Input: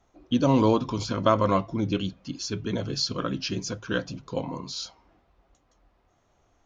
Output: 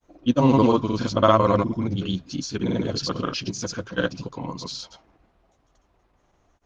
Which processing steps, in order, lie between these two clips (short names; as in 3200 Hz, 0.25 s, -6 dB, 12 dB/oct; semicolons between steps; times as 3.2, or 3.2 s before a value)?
grains 0.1 s, grains 20/s, pitch spread up and down by 0 st; gain +4.5 dB; Opus 20 kbps 48000 Hz